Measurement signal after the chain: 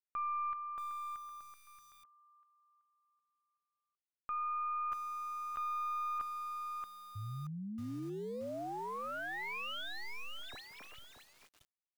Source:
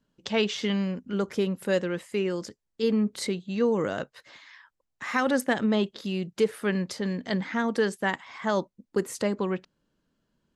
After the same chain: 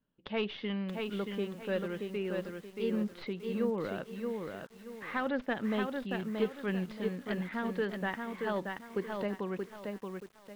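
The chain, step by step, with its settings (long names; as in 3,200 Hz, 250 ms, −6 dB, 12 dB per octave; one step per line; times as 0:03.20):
stylus tracing distortion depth 0.078 ms
inverse Chebyshev low-pass filter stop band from 8,300 Hz, stop band 50 dB
feedback echo at a low word length 628 ms, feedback 35%, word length 8 bits, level −4 dB
level −8.5 dB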